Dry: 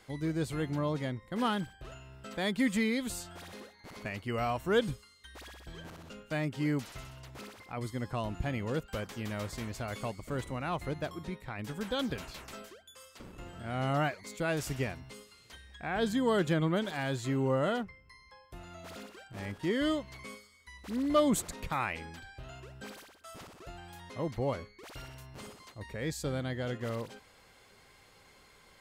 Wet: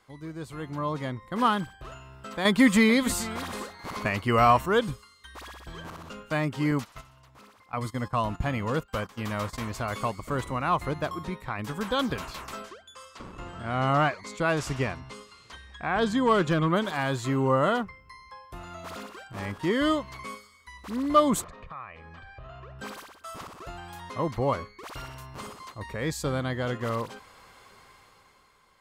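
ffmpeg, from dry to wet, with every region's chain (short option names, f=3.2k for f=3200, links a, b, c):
-filter_complex "[0:a]asettb=1/sr,asplit=3[a][b][c];[a]atrim=end=2.454[d];[b]atrim=start=2.45:end=4.66,asetpts=PTS-STARTPTS,afade=t=in:d=0.004:c=qsin,afade=t=out:st=2.206:d=0.004:c=qsin,aecho=1:1:439:0.133,atrim=end_sample=97461,acontrast=81[e];[c]atrim=start=4.656[f];[d][e]acrossfade=d=0.004:c1=hsin:c2=qsin[g];[g][f]acrossfade=d=0.004:c1=qsin:c2=hsin,asettb=1/sr,asplit=3[h][i][j];[h]atrim=end=6.714[k];[i]atrim=start=6.71:end=9.66,asetpts=PTS-STARTPTS,afade=t=in:d=0.004:c=qsin,afade=t=out:st=2.946:d=0.004:c=qsin,agate=range=-13dB:threshold=-43dB:ratio=16:release=100:detection=peak,bandreject=f=370:w=6.6[l];[j]atrim=start=9.656[m];[k][l]acrossfade=d=0.004:c1=hsin:c2=qsin[n];[n][m]acrossfade=d=0.004:c1=qsin:c2=hsin,asettb=1/sr,asplit=3[o][p][q];[o]atrim=end=12.634[r];[p]atrim=start=12.63:end=16.7,asetpts=PTS-STARTPTS,afade=t=in:d=0.004:c=qsin,afade=t=out:st=4.066:d=0.004:c=qsin,lowpass=7.9k,asoftclip=type=hard:threshold=-21.5dB[s];[q]atrim=start=16.696[t];[r][s]acrossfade=d=0.004:c1=hsin:c2=qsin[u];[u][t]acrossfade=d=0.004:c1=qsin:c2=hsin,asettb=1/sr,asplit=3[v][w][x];[v]atrim=end=21.444[y];[w]atrim=start=21.44:end=22.79,asetpts=PTS-STARTPTS,afade=t=in:d=0.004:c=qsin,afade=t=out:st=1.346:d=0.004:c=qsin,lowpass=2.6k,acompressor=threshold=-48dB:ratio=4:attack=3.2:release=140:knee=1:detection=peak,aecho=1:1:1.7:0.49,atrim=end_sample=59535[z];[x]atrim=start=22.786[aa];[y][z]acrossfade=d=0.004:c1=hsin:c2=qsin[ab];[ab][aa]acrossfade=d=0.004:c1=qsin:c2=hsin,equalizer=f=1.1k:t=o:w=0.57:g=9.5,dynaudnorm=f=140:g=13:m=11.5dB,volume=-6.5dB"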